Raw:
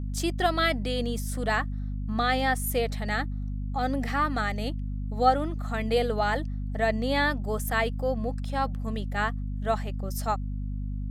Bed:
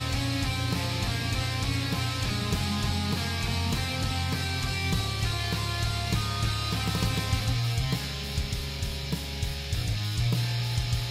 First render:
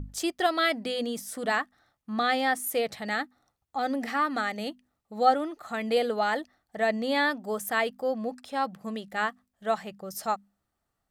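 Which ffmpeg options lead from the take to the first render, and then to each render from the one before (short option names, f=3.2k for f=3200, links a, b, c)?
-af "bandreject=f=50:t=h:w=6,bandreject=f=100:t=h:w=6,bandreject=f=150:t=h:w=6,bandreject=f=200:t=h:w=6,bandreject=f=250:t=h:w=6"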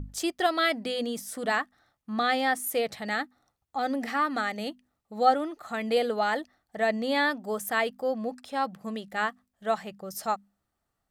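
-af anull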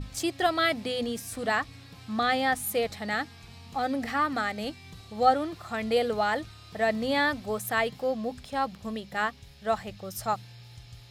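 -filter_complex "[1:a]volume=-19.5dB[a];[0:a][a]amix=inputs=2:normalize=0"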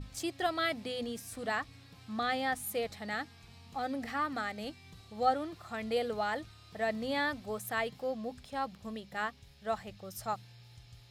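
-af "volume=-7dB"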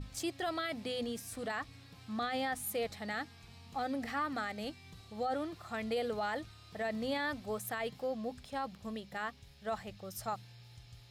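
-af "alimiter=level_in=3.5dB:limit=-24dB:level=0:latency=1:release=29,volume=-3.5dB"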